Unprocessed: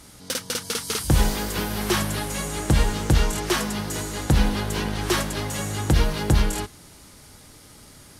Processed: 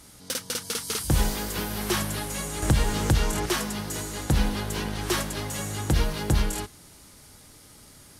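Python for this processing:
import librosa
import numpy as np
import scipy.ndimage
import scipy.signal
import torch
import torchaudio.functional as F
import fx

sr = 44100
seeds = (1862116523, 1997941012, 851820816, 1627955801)

y = fx.high_shelf(x, sr, hz=7000.0, db=4.0)
y = fx.band_squash(y, sr, depth_pct=100, at=(2.62, 3.46))
y = F.gain(torch.from_numpy(y), -4.0).numpy()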